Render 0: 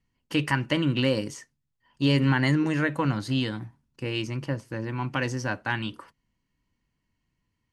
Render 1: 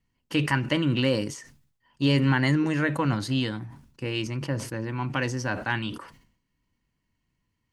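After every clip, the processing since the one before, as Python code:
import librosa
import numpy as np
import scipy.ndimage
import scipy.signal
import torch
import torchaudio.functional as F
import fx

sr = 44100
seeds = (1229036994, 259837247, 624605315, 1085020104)

y = fx.sustainer(x, sr, db_per_s=89.0)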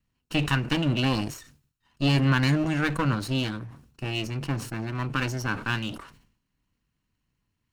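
y = fx.lower_of_two(x, sr, delay_ms=0.73)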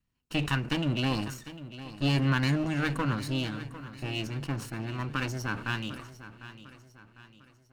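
y = fx.echo_feedback(x, sr, ms=751, feedback_pct=44, wet_db=-14.5)
y = y * librosa.db_to_amplitude(-4.0)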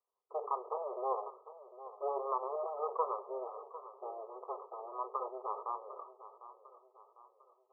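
y = fx.brickwall_bandpass(x, sr, low_hz=380.0, high_hz=1300.0)
y = y * librosa.db_to_amplitude(2.0)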